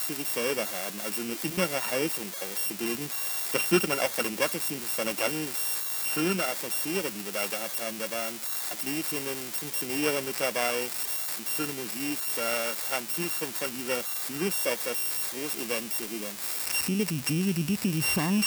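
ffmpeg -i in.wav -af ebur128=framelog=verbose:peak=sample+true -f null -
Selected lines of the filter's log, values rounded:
Integrated loudness:
  I:         -28.3 LUFS
  Threshold: -38.2 LUFS
Loudness range:
  LRA:         2.1 LU
  Threshold: -48.3 LUFS
  LRA low:   -29.2 LUFS
  LRA high:  -27.1 LUFS
Sample peak:
  Peak:      -12.7 dBFS
True peak:
  Peak:      -11.2 dBFS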